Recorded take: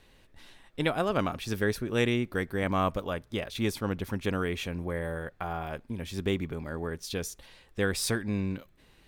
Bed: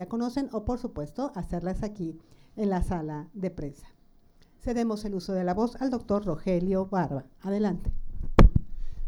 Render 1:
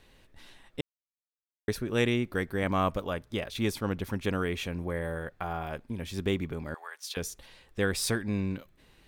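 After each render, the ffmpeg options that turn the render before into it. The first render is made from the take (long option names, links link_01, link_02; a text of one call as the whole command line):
ffmpeg -i in.wav -filter_complex "[0:a]asettb=1/sr,asplit=3[link_01][link_02][link_03];[link_01]atrim=end=6.744[link_04];[link_02]atrim=start=6.74:end=7.17,asetpts=PTS-STARTPTS,afade=type=in:duration=0.004:curve=qsin,afade=type=out:start_time=0.426:duration=0.004:curve=qsin,highpass=frequency=820:width=0.5412,highpass=frequency=820:width=1.3066[link_05];[link_03]atrim=start=7.166[link_06];[link_04][link_05]acrossfade=duration=0.004:curve1=hsin:curve2=qsin[link_07];[link_07][link_06]acrossfade=duration=0.004:curve1=qsin:curve2=hsin,asplit=3[link_08][link_09][link_10];[link_08]atrim=end=0.81,asetpts=PTS-STARTPTS,afade=type=out:start_time=0.806:duration=0.004:curve=hsin[link_11];[link_09]atrim=start=0.81:end=1.68,asetpts=PTS-STARTPTS,volume=0[link_12];[link_10]atrim=start=1.68,asetpts=PTS-STARTPTS,afade=type=in:duration=0.004:curve=hsin[link_13];[link_11][link_12][link_13]concat=n=3:v=0:a=1" out.wav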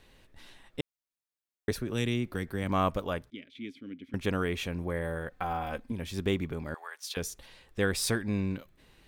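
ffmpeg -i in.wav -filter_complex "[0:a]asettb=1/sr,asplit=3[link_01][link_02][link_03];[link_01]atrim=end=1.714[link_04];[link_02]atrim=start=1.71:end=2.69,asetpts=PTS-STARTPTS,afade=type=in:duration=0.004:curve=qsin,afade=type=out:start_time=0.976:duration=0.004:curve=qsin,acrossover=split=270|3000[link_05][link_06][link_07];[link_06]acompressor=threshold=-34dB:ratio=6:attack=3.2:release=140:knee=2.83:detection=peak[link_08];[link_05][link_08][link_07]amix=inputs=3:normalize=0[link_09];[link_03]atrim=start=2.686[link_10];[link_04][link_09]acrossfade=duration=0.004:curve1=hsin:curve2=qsin[link_11];[link_11][link_10]acrossfade=duration=0.004:curve1=qsin:curve2=hsin,asettb=1/sr,asplit=3[link_12][link_13][link_14];[link_12]atrim=end=3.304[link_15];[link_13]atrim=start=3.3:end=4.14,asetpts=PTS-STARTPTS,afade=type=in:duration=0.004:curve=qsin,afade=type=out:start_time=0.836:duration=0.004:curve=qsin,asplit=3[link_16][link_17][link_18];[link_16]bandpass=frequency=270:width_type=q:width=8,volume=0dB[link_19];[link_17]bandpass=frequency=2290:width_type=q:width=8,volume=-6dB[link_20];[link_18]bandpass=frequency=3010:width_type=q:width=8,volume=-9dB[link_21];[link_19][link_20][link_21]amix=inputs=3:normalize=0[link_22];[link_14]atrim=start=4.136[link_23];[link_15][link_22]acrossfade=duration=0.004:curve1=hsin:curve2=qsin[link_24];[link_24][link_23]acrossfade=duration=0.004:curve1=qsin:curve2=hsin,asettb=1/sr,asplit=3[link_25][link_26][link_27];[link_25]atrim=end=5.304[link_28];[link_26]atrim=start=5.3:end=5.92,asetpts=PTS-STARTPTS,afade=type=in:duration=0.004:curve=qsin,afade=type=out:start_time=0.616:duration=0.004:curve=qsin,aecho=1:1:3.9:0.65,atrim=end_sample=27342[link_29];[link_27]atrim=start=5.916[link_30];[link_28][link_29]acrossfade=duration=0.004:curve1=hsin:curve2=qsin[link_31];[link_31][link_30]acrossfade=duration=0.004:curve1=qsin:curve2=hsin" out.wav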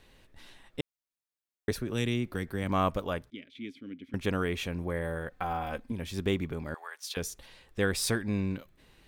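ffmpeg -i in.wav -af anull out.wav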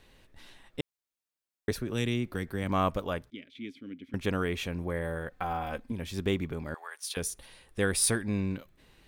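ffmpeg -i in.wav -filter_complex "[0:a]asettb=1/sr,asplit=3[link_01][link_02][link_03];[link_01]atrim=end=6.914[link_04];[link_02]atrim=start=6.91:end=8.25,asetpts=PTS-STARTPTS,afade=type=in:duration=0.004:curve=qsin,afade=type=out:start_time=1.336:duration=0.004:curve=qsin,equalizer=frequency=9600:width_type=o:width=0.21:gain=13.5[link_05];[link_03]atrim=start=8.246[link_06];[link_04][link_05]acrossfade=duration=0.004:curve1=hsin:curve2=qsin[link_07];[link_07][link_06]acrossfade=duration=0.004:curve1=qsin:curve2=hsin" out.wav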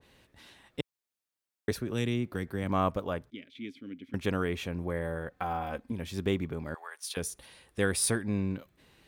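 ffmpeg -i in.wav -af "highpass=62,adynamicequalizer=threshold=0.00501:dfrequency=1600:dqfactor=0.7:tfrequency=1600:tqfactor=0.7:attack=5:release=100:ratio=0.375:range=3:mode=cutabove:tftype=highshelf" out.wav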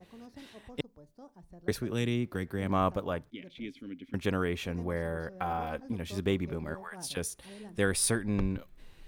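ffmpeg -i in.wav -i bed.wav -filter_complex "[1:a]volume=-20.5dB[link_01];[0:a][link_01]amix=inputs=2:normalize=0" out.wav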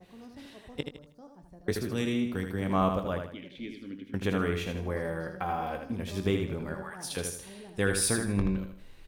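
ffmpeg -i in.wav -filter_complex "[0:a]asplit=2[link_01][link_02];[link_02]adelay=21,volume=-12dB[link_03];[link_01][link_03]amix=inputs=2:normalize=0,asplit=2[link_04][link_05];[link_05]aecho=0:1:79|158|237|316:0.501|0.18|0.065|0.0234[link_06];[link_04][link_06]amix=inputs=2:normalize=0" out.wav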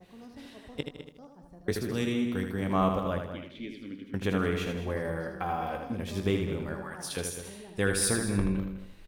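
ffmpeg -i in.wav -filter_complex "[0:a]asplit=2[link_01][link_02];[link_02]adelay=204.1,volume=-10dB,highshelf=frequency=4000:gain=-4.59[link_03];[link_01][link_03]amix=inputs=2:normalize=0" out.wav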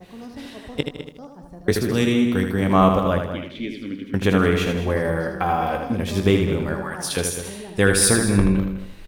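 ffmpeg -i in.wav -af "volume=10.5dB" out.wav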